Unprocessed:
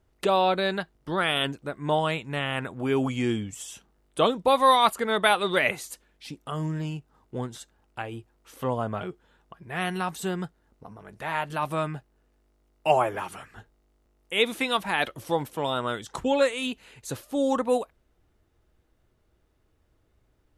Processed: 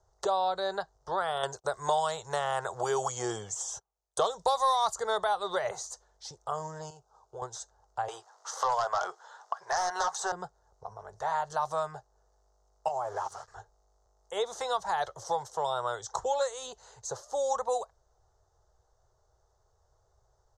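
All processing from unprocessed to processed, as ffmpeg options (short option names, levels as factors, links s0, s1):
-filter_complex "[0:a]asettb=1/sr,asplit=3[s0][s1][s2];[s0]atrim=end=1.434[s3];[s1]atrim=start=1.43:end=5.24,asetpts=PTS-STARTPTS,afade=t=in:d=0.004:c=qsin,afade=t=out:st=3.806:d=0.004:c=qsin,acontrast=34,agate=range=0.0398:threshold=0.00631:ratio=16:release=100:detection=peak,highshelf=f=3200:g=11[s4];[s2]atrim=start=5.236[s5];[s3][s4]acrossfade=d=0.004:c1=hsin:c2=qsin[s6];[s6][s5]acrossfade=d=0.004:c1=qsin:c2=hsin,asettb=1/sr,asplit=3[s7][s8][s9];[s7]atrim=end=6.904[s10];[s8]atrim=start=6.9:end=7.42,asetpts=PTS-STARTPTS,afade=t=in:d=0.004:c=qsin,afade=t=out:st=0.516:d=0.004:c=qsin,acompressor=threshold=0.0178:ratio=4:attack=3.2:release=140:knee=1:detection=peak,asuperstop=centerf=1900:order=4:qfactor=3,bass=f=250:g=-7,treble=f=4000:g=0[s11];[s9]atrim=start=7.416[s12];[s10][s11]acrossfade=d=0.004:c1=hsin:c2=qsin[s13];[s13][s12]acrossfade=d=0.004:c1=qsin:c2=hsin,asettb=1/sr,asplit=3[s14][s15][s16];[s14]atrim=end=8.084[s17];[s15]atrim=start=8.08:end=10.32,asetpts=PTS-STARTPTS,afade=t=in:d=0.004:c=qsin,afade=t=out:st=2.236:d=0.004:c=qsin,highpass=990,highshelf=f=5300:g=-8,aeval=exprs='0.141*sin(PI/2*4.47*val(0)/0.141)':c=same[s18];[s16]atrim=start=10.316[s19];[s17][s18]acrossfade=d=0.004:c1=hsin:c2=qsin[s20];[s20][s19]acrossfade=d=0.004:c1=qsin:c2=hsin,asettb=1/sr,asplit=3[s21][s22][s23];[s21]atrim=end=12.884[s24];[s22]atrim=start=12.88:end=13.48,asetpts=PTS-STARTPTS,afade=t=in:d=0.004:c=qsin,afade=t=out:st=0.596:d=0.004:c=qsin,aeval=exprs='sgn(val(0))*max(abs(val(0))-0.00355,0)':c=same,acompressor=threshold=0.0316:ratio=5:attack=3.2:release=140:knee=1:detection=peak[s25];[s23]atrim=start=13.476[s26];[s24][s25]acrossfade=d=0.004:c1=hsin:c2=qsin[s27];[s27][s26]acrossfade=d=0.004:c1=qsin:c2=hsin,firequalizer=gain_entry='entry(110,0);entry(270,-28);entry(390,0);entry(780,10);entry(2500,-14);entry(4000,1);entry(6300,13);entry(11000,-16)':delay=0.05:min_phase=1,acrossover=split=200|1700[s28][s29][s30];[s28]acompressor=threshold=0.00316:ratio=4[s31];[s29]acompressor=threshold=0.0501:ratio=4[s32];[s30]acompressor=threshold=0.0178:ratio=4[s33];[s31][s32][s33]amix=inputs=3:normalize=0,equalizer=f=2400:w=4.2:g=-8.5,volume=0.75"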